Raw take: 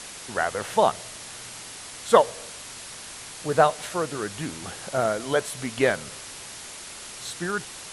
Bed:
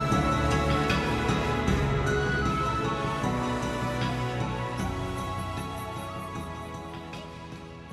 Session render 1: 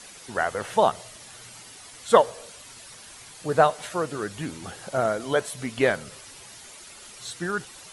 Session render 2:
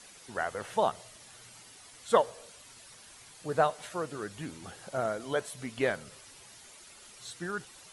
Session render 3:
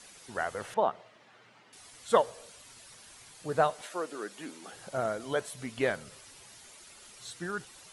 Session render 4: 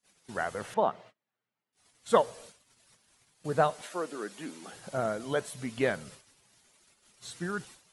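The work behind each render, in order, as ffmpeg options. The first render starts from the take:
-af "afftdn=nr=9:nf=-41"
-af "volume=0.422"
-filter_complex "[0:a]asettb=1/sr,asplit=3[s0][s1][s2];[s0]atrim=end=0.744[s3];[s1]atrim=start=0.74:end=1.73,asetpts=PTS-STARTPTS,afade=t=in:d=0.004:c=qsin,afade=t=out:st=0.986:d=0.004:c=qsin,highpass=190,lowpass=2300[s4];[s2]atrim=start=1.726[s5];[s3][s4]acrossfade=d=0.004:c1=hsin:c2=qsin[s6];[s6][s5]acrossfade=d=0.004:c1=qsin:c2=hsin,asettb=1/sr,asplit=3[s7][s8][s9];[s7]atrim=end=3.814[s10];[s8]atrim=start=3.81:end=4.73,asetpts=PTS-STARTPTS,afade=t=in:d=0.004:c=qsin,afade=t=out:st=0.916:d=0.004:c=qsin,highpass=f=240:w=0.5412,highpass=f=240:w=1.3066[s11];[s9]atrim=start=4.726[s12];[s10][s11]acrossfade=d=0.004:c1=hsin:c2=qsin[s13];[s13][s12]acrossfade=d=0.004:c1=qsin:c2=hsin"
-af "agate=range=0.0251:threshold=0.00316:ratio=16:detection=peak,equalizer=f=180:t=o:w=1.3:g=5"

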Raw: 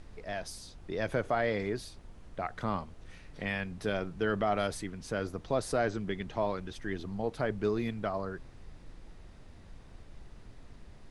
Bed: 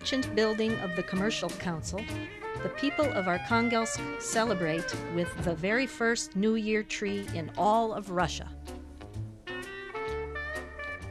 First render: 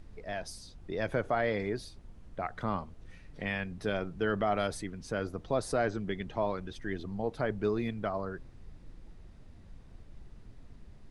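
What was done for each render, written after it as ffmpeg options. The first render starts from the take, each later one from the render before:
-af "afftdn=nr=6:nf=-52"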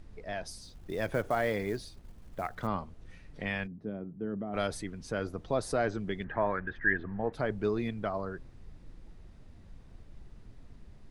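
-filter_complex "[0:a]asettb=1/sr,asplit=3[s0][s1][s2];[s0]atrim=end=0.624[s3];[s1]atrim=start=0.62:end=2.67,asetpts=PTS-STARTPTS,afade=t=in:d=0.004:c=qsin,afade=t=out:st=2.046:d=0.004:c=qsin,acrusher=bits=6:mode=log:mix=0:aa=0.000001[s4];[s2]atrim=start=2.666[s5];[s3][s4]acrossfade=d=0.004:c1=hsin:c2=qsin[s6];[s6][s5]acrossfade=d=0.004:c1=qsin:c2=hsin,asplit=3[s7][s8][s9];[s7]afade=t=out:st=3.66:d=0.02[s10];[s8]bandpass=f=220:t=q:w=1.4,afade=t=in:st=3.66:d=0.02,afade=t=out:st=4.53:d=0.02[s11];[s9]afade=t=in:st=4.53:d=0.02[s12];[s10][s11][s12]amix=inputs=3:normalize=0,asettb=1/sr,asplit=3[s13][s14][s15];[s13]atrim=end=6.244[s16];[s14]atrim=start=6.24:end=7.33,asetpts=PTS-STARTPTS,afade=t=in:d=0.004:c=qsin,afade=t=out:st=1.086:d=0.004:c=qsin,lowpass=f=1700:t=q:w=9.8[s17];[s15]atrim=start=7.326[s18];[s16][s17]acrossfade=d=0.004:c1=hsin:c2=qsin[s19];[s19][s18]acrossfade=d=0.004:c1=qsin:c2=hsin"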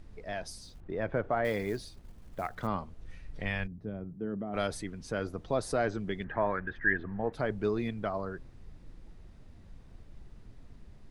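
-filter_complex "[0:a]asettb=1/sr,asplit=3[s0][s1][s2];[s0]atrim=end=0.804[s3];[s1]atrim=start=0.8:end=1.45,asetpts=PTS-STARTPTS,afade=t=in:d=0.004:c=qsin,afade=t=out:st=0.646:d=0.004:c=qsin,lowpass=1900[s4];[s2]atrim=start=1.446[s5];[s3][s4]acrossfade=d=0.004:c1=hsin:c2=qsin[s6];[s6][s5]acrossfade=d=0.004:c1=qsin:c2=hsin,asettb=1/sr,asplit=3[s7][s8][s9];[s7]atrim=end=2.844[s10];[s8]atrim=start=2.84:end=4.14,asetpts=PTS-STARTPTS,afade=t=in:d=0.004:c=qsin,afade=t=out:st=1.296:d=0.004:c=qsin,asubboost=boost=10.5:cutoff=110[s11];[s9]atrim=start=4.136[s12];[s10][s11]acrossfade=d=0.004:c1=hsin:c2=qsin[s13];[s13][s12]acrossfade=d=0.004:c1=qsin:c2=hsin"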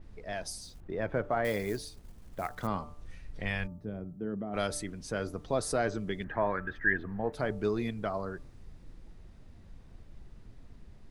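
-af "bandreject=f=147.3:t=h:w=4,bandreject=f=294.6:t=h:w=4,bandreject=f=441.9:t=h:w=4,bandreject=f=589.2:t=h:w=4,bandreject=f=736.5:t=h:w=4,bandreject=f=883.8:t=h:w=4,bandreject=f=1031.1:t=h:w=4,bandreject=f=1178.4:t=h:w=4,bandreject=f=1325.7:t=h:w=4,adynamicequalizer=threshold=0.002:dfrequency=4900:dqfactor=0.7:tfrequency=4900:tqfactor=0.7:attack=5:release=100:ratio=0.375:range=3.5:mode=boostabove:tftype=highshelf"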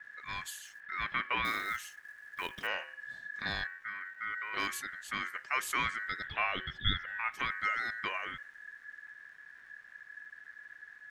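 -filter_complex "[0:a]acrossover=split=170|1200|4500[s0][s1][s2][s3];[s0]aeval=exprs='val(0)*gte(abs(val(0)),0.00119)':c=same[s4];[s4][s1][s2][s3]amix=inputs=4:normalize=0,aeval=exprs='val(0)*sin(2*PI*1700*n/s)':c=same"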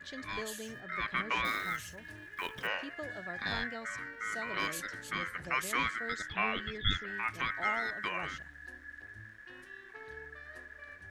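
-filter_complex "[1:a]volume=0.158[s0];[0:a][s0]amix=inputs=2:normalize=0"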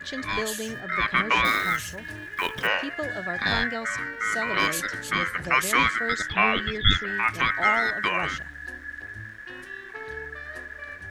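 -af "volume=3.55"

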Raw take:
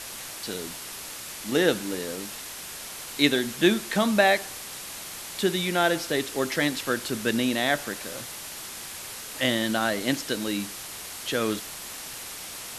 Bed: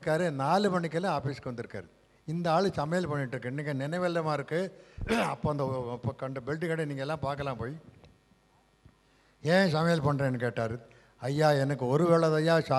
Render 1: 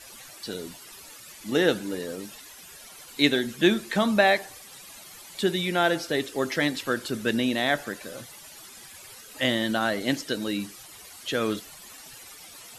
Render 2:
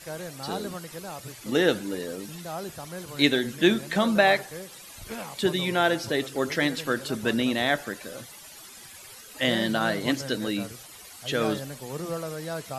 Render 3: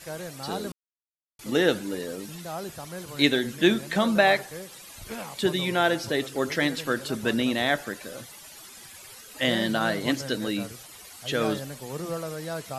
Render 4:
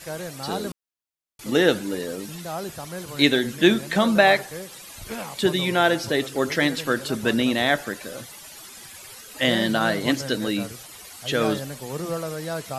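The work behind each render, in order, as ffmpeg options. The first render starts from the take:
-af "afftdn=nr=13:nf=-39"
-filter_complex "[1:a]volume=0.355[s0];[0:a][s0]amix=inputs=2:normalize=0"
-filter_complex "[0:a]asplit=3[s0][s1][s2];[s0]atrim=end=0.72,asetpts=PTS-STARTPTS,afade=t=out:st=0.716:d=0.004:c=hsin[s3];[s1]atrim=start=0.72:end=1.39,asetpts=PTS-STARTPTS,volume=0[s4];[s2]atrim=start=1.39,asetpts=PTS-STARTPTS,afade=t=in:d=0.004:c=hsin[s5];[s3][s4][s5]concat=n=3:v=0:a=1"
-af "volume=1.5,alimiter=limit=0.708:level=0:latency=1"

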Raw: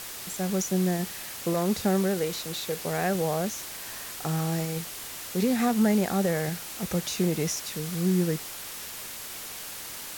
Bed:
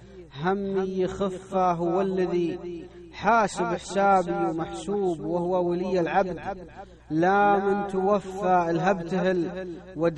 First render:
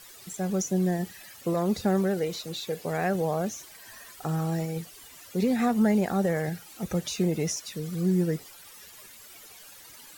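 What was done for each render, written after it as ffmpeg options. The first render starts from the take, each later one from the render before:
-af "afftdn=nr=14:nf=-39"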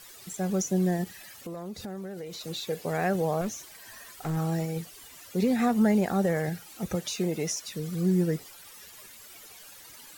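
-filter_complex "[0:a]asettb=1/sr,asplit=3[s0][s1][s2];[s0]atrim=end=1.044[s3];[s1]atrim=start=1.04:end=2.41,asetpts=PTS-STARTPTS,afade=t=in:d=0.004:c=qsin,afade=t=out:st=1.366:d=0.004:c=qsin,acompressor=threshold=0.0158:ratio=5:attack=3.2:release=140:knee=1:detection=peak[s4];[s2]atrim=start=2.406[s5];[s3][s4]acrossfade=d=0.004:c1=hsin:c2=qsin[s6];[s6][s5]acrossfade=d=0.004:c1=qsin:c2=hsin,asettb=1/sr,asplit=3[s7][s8][s9];[s7]atrim=end=3.414[s10];[s8]atrim=start=3.41:end=4.37,asetpts=PTS-STARTPTS,afade=t=in:d=0.004:c=qsin,afade=t=out:st=0.956:d=0.004:c=qsin,aeval=exprs='clip(val(0),-1,0.0316)':c=same[s11];[s9]atrim=start=4.366[s12];[s10][s11]acrossfade=d=0.004:c1=hsin:c2=qsin[s13];[s13][s12]acrossfade=d=0.004:c1=qsin:c2=hsin,asettb=1/sr,asplit=3[s14][s15][s16];[s14]atrim=end=6.954[s17];[s15]atrim=start=6.95:end=7.61,asetpts=PTS-STARTPTS,afade=t=in:d=0.004:c=qsin,afade=t=out:st=0.656:d=0.004:c=qsin,lowshelf=f=160:g=-10[s18];[s16]atrim=start=7.606[s19];[s17][s18]acrossfade=d=0.004:c1=hsin:c2=qsin[s20];[s20][s19]acrossfade=d=0.004:c1=qsin:c2=hsin"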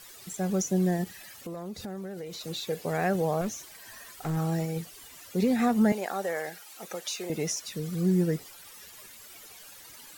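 -filter_complex "[0:a]asettb=1/sr,asplit=3[s0][s1][s2];[s0]atrim=end=5.924[s3];[s1]atrim=start=5.92:end=7.3,asetpts=PTS-STARTPTS,afade=t=in:d=0.004:c=qsin,afade=t=out:st=1.376:d=0.004:c=qsin,highpass=530[s4];[s2]atrim=start=7.296[s5];[s3][s4]acrossfade=d=0.004:c1=hsin:c2=qsin[s6];[s6][s5]acrossfade=d=0.004:c1=qsin:c2=hsin"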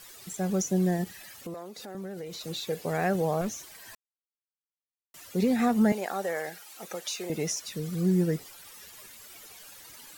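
-filter_complex "[0:a]asettb=1/sr,asplit=3[s0][s1][s2];[s0]atrim=end=1.544[s3];[s1]atrim=start=1.54:end=1.95,asetpts=PTS-STARTPTS,afade=t=in:d=0.004:c=qsin,afade=t=out:st=0.406:d=0.004:c=qsin,highpass=350[s4];[s2]atrim=start=1.946[s5];[s3][s4]acrossfade=d=0.004:c1=hsin:c2=qsin[s6];[s6][s5]acrossfade=d=0.004:c1=qsin:c2=hsin,asplit=3[s7][s8][s9];[s7]atrim=end=3.95,asetpts=PTS-STARTPTS,afade=t=out:st=3.946:d=0.004:c=hsin[s10];[s8]atrim=start=3.95:end=5.14,asetpts=PTS-STARTPTS,volume=0[s11];[s9]atrim=start=5.14,asetpts=PTS-STARTPTS,afade=t=in:d=0.004:c=hsin[s12];[s10][s11][s12]concat=n=3:v=0:a=1"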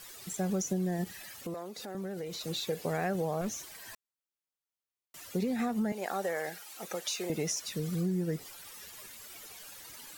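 -af "acompressor=threshold=0.0398:ratio=10"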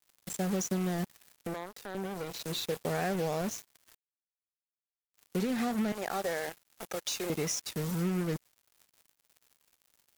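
-af "acrusher=bits=5:mix=0:aa=0.5"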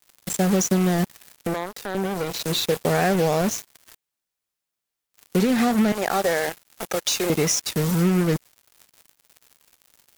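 -af "volume=3.76"

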